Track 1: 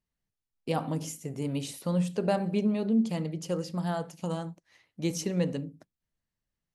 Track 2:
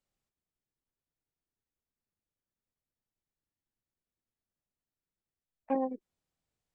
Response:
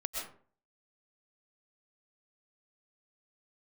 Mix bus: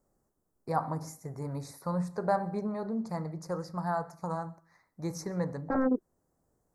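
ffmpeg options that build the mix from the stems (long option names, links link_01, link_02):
-filter_complex "[0:a]equalizer=frequency=250:width_type=o:width=1:gain=-11,equalizer=frequency=500:width_type=o:width=1:gain=-4,equalizer=frequency=1000:width_type=o:width=1:gain=6,equalizer=frequency=2000:width_type=o:width=1:gain=8,equalizer=frequency=4000:width_type=o:width=1:gain=11,equalizer=frequency=8000:width_type=o:width=1:gain=-8,volume=0.5dB,asplit=3[link_01][link_02][link_03];[link_02]volume=-23dB[link_04];[1:a]equalizer=frequency=360:width=0.69:gain=6,aeval=exprs='0.178*sin(PI/2*3.16*val(0)/0.178)':channel_layout=same,volume=-1dB[link_05];[link_03]apad=whole_len=297547[link_06];[link_05][link_06]sidechaincompress=threshold=-32dB:ratio=8:attack=16:release=1300[link_07];[2:a]atrim=start_sample=2205[link_08];[link_04][link_08]afir=irnorm=-1:irlink=0[link_09];[link_01][link_07][link_09]amix=inputs=3:normalize=0,asuperstop=centerf=3000:order=4:qfactor=0.51,highshelf=frequency=6900:gain=-5.5"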